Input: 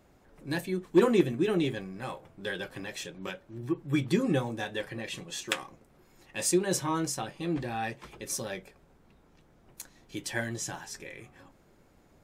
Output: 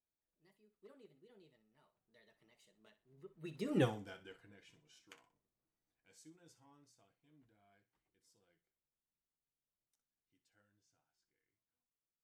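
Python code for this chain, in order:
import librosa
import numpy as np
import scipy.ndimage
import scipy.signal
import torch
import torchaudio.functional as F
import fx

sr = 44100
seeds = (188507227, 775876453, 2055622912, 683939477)

y = fx.doppler_pass(x, sr, speed_mps=43, closest_m=2.5, pass_at_s=3.82)
y = fx.echo_thinned(y, sr, ms=61, feedback_pct=27, hz=720.0, wet_db=-13)
y = F.gain(torch.from_numpy(y), -4.0).numpy()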